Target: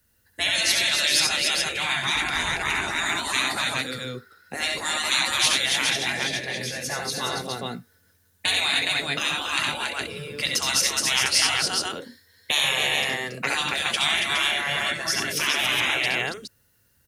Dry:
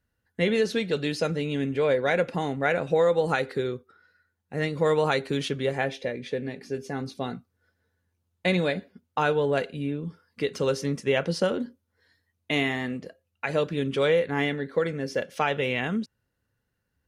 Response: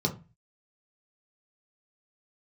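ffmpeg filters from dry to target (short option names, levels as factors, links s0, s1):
-filter_complex "[0:a]asettb=1/sr,asplit=3[s0][s1][s2];[s0]atrim=end=2.144[s3];[s1]atrim=start=2.14:end=2.74,asetpts=PTS-STARTPTS,afade=t=in:d=0.004:c=qsin,afade=t=out:st=0.596:d=0.004:c=qsin,tremolo=f=230:d=0.462[s4];[s2]atrim=start=2.736[s5];[s3][s4]acrossfade=d=0.004:c1=hsin:c2=qsin[s6];[s6][s5]acrossfade=d=0.004:c1=qsin:c2=hsin,aecho=1:1:69|91|233|241|279|416:0.501|0.355|0.106|0.133|0.531|0.531,afftfilt=real='re*lt(hypot(re,im),0.112)':imag='im*lt(hypot(re,im),0.112)':win_size=1024:overlap=0.75,acrossover=split=160|730[s7][s8][s9];[s9]crystalizer=i=3.5:c=0[s10];[s7][s8][s10]amix=inputs=3:normalize=0,volume=2"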